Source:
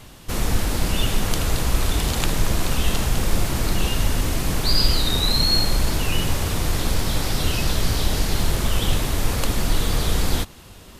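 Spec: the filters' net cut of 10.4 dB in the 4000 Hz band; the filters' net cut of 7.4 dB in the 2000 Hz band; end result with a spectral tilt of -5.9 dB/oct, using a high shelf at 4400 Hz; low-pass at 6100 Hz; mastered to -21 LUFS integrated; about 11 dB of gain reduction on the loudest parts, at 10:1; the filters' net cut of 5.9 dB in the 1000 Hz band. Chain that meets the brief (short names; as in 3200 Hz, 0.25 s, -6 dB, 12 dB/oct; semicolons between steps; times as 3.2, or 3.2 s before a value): LPF 6100 Hz; bell 1000 Hz -6 dB; bell 2000 Hz -4.5 dB; bell 4000 Hz -7.5 dB; high shelf 4400 Hz -5 dB; compressor 10:1, threshold -24 dBFS; gain +12.5 dB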